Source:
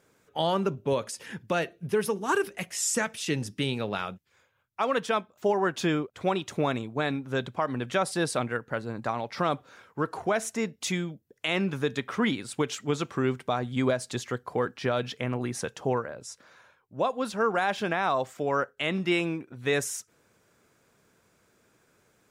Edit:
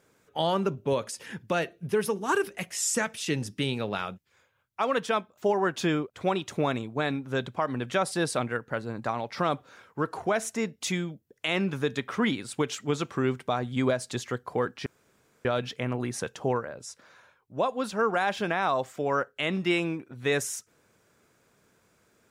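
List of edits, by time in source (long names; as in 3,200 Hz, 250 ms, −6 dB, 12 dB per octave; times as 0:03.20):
0:14.86: splice in room tone 0.59 s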